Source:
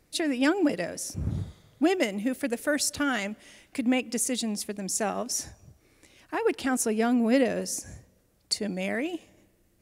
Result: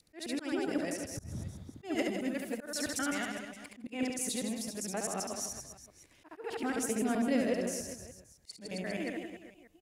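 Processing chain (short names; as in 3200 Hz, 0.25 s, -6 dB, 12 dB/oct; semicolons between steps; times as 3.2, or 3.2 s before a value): local time reversal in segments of 0.13 s; reverse bouncing-ball echo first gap 70 ms, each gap 1.25×, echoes 5; auto swell 0.186 s; gain -8.5 dB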